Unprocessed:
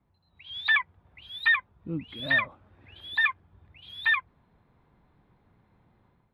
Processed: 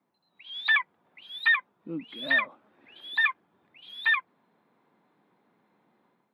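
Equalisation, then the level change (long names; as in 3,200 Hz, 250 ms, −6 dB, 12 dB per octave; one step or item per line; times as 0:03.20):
high-pass filter 210 Hz 24 dB per octave
0.0 dB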